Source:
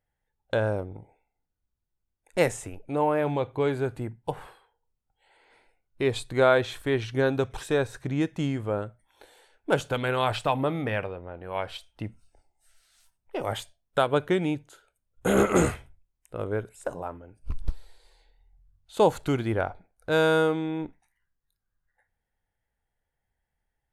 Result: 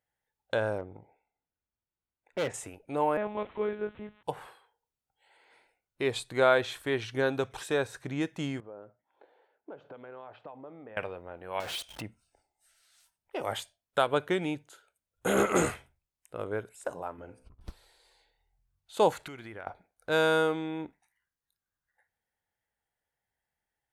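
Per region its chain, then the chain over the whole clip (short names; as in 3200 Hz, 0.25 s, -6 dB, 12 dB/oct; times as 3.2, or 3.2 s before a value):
0.78–2.54 LPF 2600 Hz + hard clip -22.5 dBFS
3.17–4.23 switching spikes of -26 dBFS + monotone LPC vocoder at 8 kHz 210 Hz + air absorption 420 m
8.6–10.97 compressor 10:1, threshold -35 dBFS + band-pass 480 Hz, Q 0.69 + air absorption 220 m
11.6–12.02 compressor 4:1, threshold -40 dBFS + power-law curve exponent 0.35
17.18–17.61 treble ducked by the level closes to 870 Hz, closed at -26.5 dBFS + de-hum 63.93 Hz, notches 39 + negative-ratio compressor -36 dBFS
19.12–19.67 bell 2000 Hz +7.5 dB 0.91 oct + compressor 8:1, threshold -35 dBFS
whole clip: HPF 110 Hz 6 dB/oct; low shelf 440 Hz -5.5 dB; gain -1 dB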